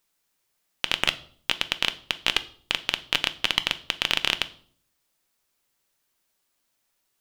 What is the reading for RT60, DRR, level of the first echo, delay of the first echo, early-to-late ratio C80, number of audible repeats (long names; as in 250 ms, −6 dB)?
0.55 s, 11.0 dB, no echo audible, no echo audible, 22.0 dB, no echo audible